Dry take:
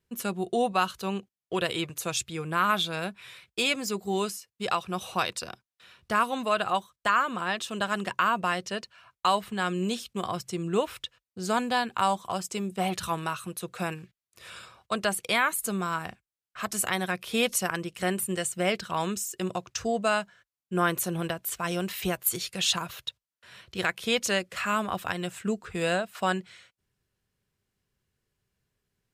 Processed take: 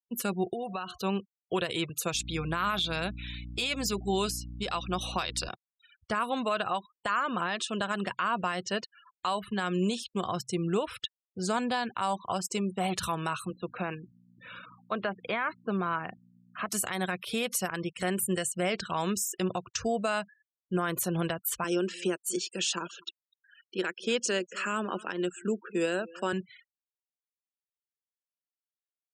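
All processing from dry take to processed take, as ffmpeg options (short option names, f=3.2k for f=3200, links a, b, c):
-filter_complex "[0:a]asettb=1/sr,asplit=3[a][b][c];[a]atrim=end=0.534[d];[b]atrim=start=0.53:end=0.98,asetpts=PTS-STARTPTS,afade=t=in:d=0.004:c=qsin,afade=t=out:st=0.446:d=0.004:c=qsin,bandreject=f=359.2:t=h:w=4,bandreject=f=718.4:t=h:w=4,bandreject=f=1.0776k:t=h:w=4,adynamicequalizer=threshold=0.00251:dfrequency=4100:dqfactor=6.5:tfrequency=4100:tqfactor=6.5:attack=5:release=100:ratio=0.375:range=2.5:mode=cutabove:tftype=bell,acompressor=threshold=-32dB:ratio=10:attack=3.2:release=140:knee=1:detection=peak[e];[c]atrim=start=0.976[f];[d][e]acrossfade=d=0.004:c1=hsin:c2=qsin[g];[g][f]acrossfade=d=0.004:c1=qsin:c2=hsin,asettb=1/sr,asplit=3[h][i][j];[h]atrim=end=2.144[k];[i]atrim=start=2.14:end=5.49,asetpts=PTS-STARTPTS,afade=t=in:d=0.004:c=qsin,afade=t=out:st=3.346:d=0.004:c=qsin,equalizer=f=3.8k:w=1.2:g=5,bandreject=f=450:w=14,aeval=exprs='val(0)+0.00891*(sin(2*PI*60*n/s)+sin(2*PI*2*60*n/s)/2+sin(2*PI*3*60*n/s)/3+sin(2*PI*4*60*n/s)/4+sin(2*PI*5*60*n/s)/5)':c=same[l];[j]atrim=start=5.486[m];[k][l]acrossfade=d=0.004:c1=hsin:c2=qsin[n];[n][m]acrossfade=d=0.004:c1=qsin:c2=hsin,asettb=1/sr,asplit=3[o][p][q];[o]atrim=end=13.504[r];[p]atrim=start=13.5:end=16.69,asetpts=PTS-STARTPTS,afade=t=in:d=0.004:c=qsin,afade=t=out:st=3.186:d=0.004:c=qsin,acrossover=split=2500[s][t];[t]acompressor=threshold=-38dB:ratio=4:attack=1:release=60[u];[s][u]amix=inputs=2:normalize=0,aeval=exprs='val(0)+0.00316*(sin(2*PI*60*n/s)+sin(2*PI*2*60*n/s)/2+sin(2*PI*3*60*n/s)/3+sin(2*PI*4*60*n/s)/4+sin(2*PI*5*60*n/s)/5)':c=same,highpass=160,lowpass=3.3k[v];[q]atrim=start=16.686[w];[r][v]acrossfade=d=0.004:c1=hsin:c2=qsin[x];[x][w]acrossfade=d=0.004:c1=qsin:c2=hsin,asettb=1/sr,asplit=3[y][z][aa];[y]atrim=end=21.644[ab];[z]atrim=start=21.64:end=26.33,asetpts=PTS-STARTPTS,afade=t=in:d=0.004:c=qsin,afade=t=out:st=4.686:d=0.004:c=qsin,highpass=f=210:w=0.5412,highpass=f=210:w=1.3066,equalizer=f=360:t=q:w=4:g=6,equalizer=f=720:t=q:w=4:g=-10,equalizer=f=1.1k:t=q:w=4:g=-5,equalizer=f=2.1k:t=q:w=4:g=-8,equalizer=f=3.8k:t=q:w=4:g=-8,lowpass=f=8.7k:w=0.5412,lowpass=f=8.7k:w=1.3066,aecho=1:1:245:0.0708,atrim=end_sample=206829[ac];[aa]atrim=start=26.326[ad];[ab][ac]acrossfade=d=0.004:c1=hsin:c2=qsin[ae];[ae][ad]acrossfade=d=0.004:c1=qsin:c2=hsin,afftfilt=real='re*gte(hypot(re,im),0.00708)':imag='im*gte(hypot(re,im),0.00708)':win_size=1024:overlap=0.75,alimiter=limit=-21dB:level=0:latency=1:release=89,volume=1.5dB"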